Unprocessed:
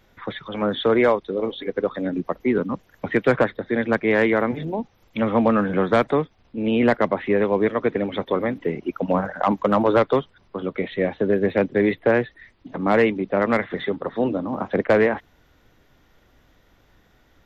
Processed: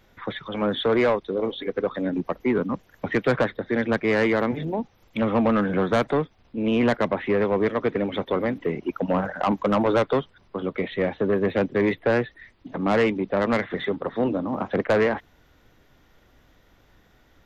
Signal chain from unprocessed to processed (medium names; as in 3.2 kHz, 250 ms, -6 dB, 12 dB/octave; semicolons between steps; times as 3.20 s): saturation -14 dBFS, distortion -15 dB